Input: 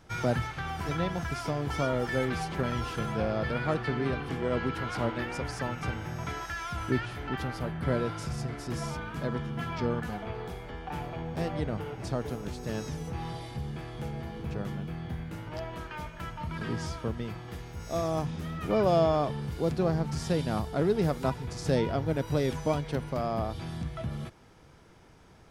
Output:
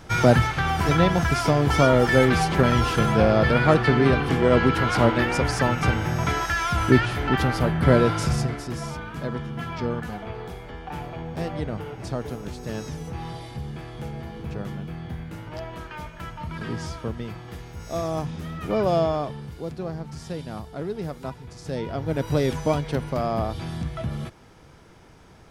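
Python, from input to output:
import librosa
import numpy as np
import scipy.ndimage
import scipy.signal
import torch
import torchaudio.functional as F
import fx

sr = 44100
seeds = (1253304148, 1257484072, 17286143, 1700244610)

y = fx.gain(x, sr, db=fx.line((8.34, 11.5), (8.74, 2.5), (18.97, 2.5), (19.69, -4.5), (21.7, -4.5), (22.25, 5.5)))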